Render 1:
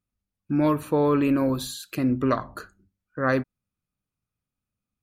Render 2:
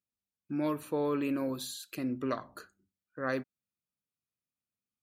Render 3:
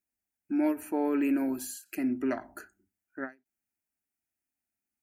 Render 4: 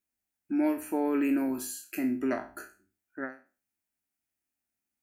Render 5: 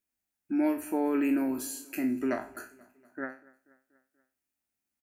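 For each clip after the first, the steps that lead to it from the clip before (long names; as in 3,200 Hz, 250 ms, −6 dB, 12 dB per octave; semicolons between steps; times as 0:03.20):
high-pass filter 350 Hz 6 dB per octave; parametric band 1,100 Hz −5 dB 1.9 octaves; level −5.5 dB
phaser with its sweep stopped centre 750 Hz, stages 8; every ending faded ahead of time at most 260 dB per second; level +6 dB
peak hold with a decay on every bin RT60 0.35 s
repeating echo 241 ms, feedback 58%, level −23 dB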